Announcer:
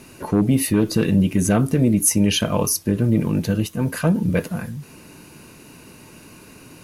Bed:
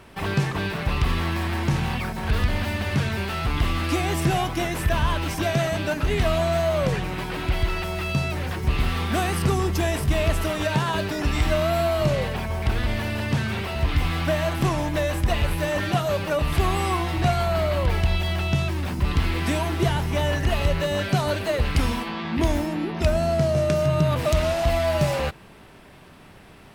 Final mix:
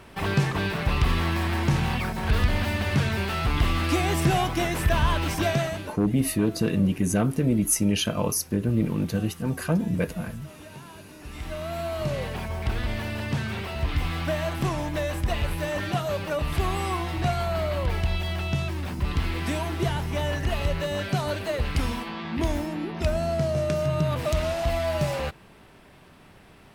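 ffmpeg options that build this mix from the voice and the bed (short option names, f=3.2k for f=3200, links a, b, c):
-filter_complex "[0:a]adelay=5650,volume=-5.5dB[a];[1:a]volume=17.5dB,afade=t=out:st=5.46:d=0.5:silence=0.0841395,afade=t=in:st=11.16:d=1.29:silence=0.133352[b];[a][b]amix=inputs=2:normalize=0"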